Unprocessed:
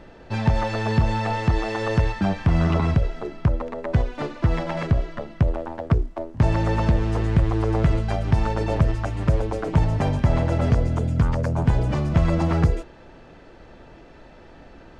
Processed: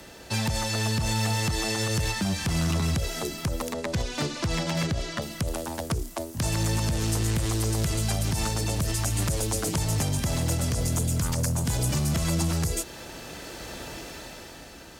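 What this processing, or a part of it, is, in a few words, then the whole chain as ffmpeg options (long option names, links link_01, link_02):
FM broadcast chain: -filter_complex "[0:a]asettb=1/sr,asplit=3[link_01][link_02][link_03];[link_01]atrim=end=3.734[link_04];[link_02]atrim=start=3.73:end=5.22,asetpts=PTS-STARTPTS,afade=type=in:duration=0.004:curve=qsin,afade=type=out:start_time=1.486:duration=0.004:curve=qsin,lowpass=6200[link_05];[link_03]atrim=start=5.216[link_06];[link_04][link_05]acrossfade=duration=0.004:curve1=hsin:curve2=qsin[link_07];[link_07][link_06]acrossfade=duration=0.004:curve1=qsin:curve2=hsin,highpass=43,dynaudnorm=framelen=190:gausssize=11:maxgain=11.5dB,acrossover=split=94|240|3400[link_08][link_09][link_10][link_11];[link_08]acompressor=threshold=-28dB:ratio=4[link_12];[link_09]acompressor=threshold=-22dB:ratio=4[link_13];[link_10]acompressor=threshold=-32dB:ratio=4[link_14];[link_11]acompressor=threshold=-47dB:ratio=4[link_15];[link_12][link_13][link_14][link_15]amix=inputs=4:normalize=0,aemphasis=mode=production:type=75fm,alimiter=limit=-17dB:level=0:latency=1:release=63,asoftclip=type=hard:threshold=-20.5dB,lowpass=frequency=15000:width=0.5412,lowpass=frequency=15000:width=1.3066,aemphasis=mode=production:type=75fm"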